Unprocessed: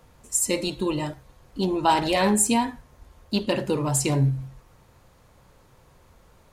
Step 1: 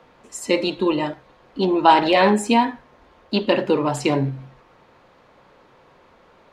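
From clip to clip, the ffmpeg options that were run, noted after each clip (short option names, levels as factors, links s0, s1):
-filter_complex "[0:a]acrossover=split=200 4300:gain=0.126 1 0.0708[s0][s1][s2];[s0][s1][s2]amix=inputs=3:normalize=0,volume=2.24"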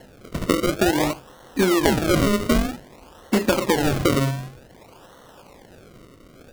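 -af "acrusher=samples=36:mix=1:aa=0.000001:lfo=1:lforange=36:lforate=0.53,acompressor=threshold=0.0891:ratio=12,volume=2"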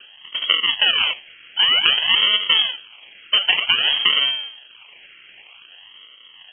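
-af "lowpass=f=2800:t=q:w=0.5098,lowpass=f=2800:t=q:w=0.6013,lowpass=f=2800:t=q:w=0.9,lowpass=f=2800:t=q:w=2.563,afreqshift=-3300,volume=1.26"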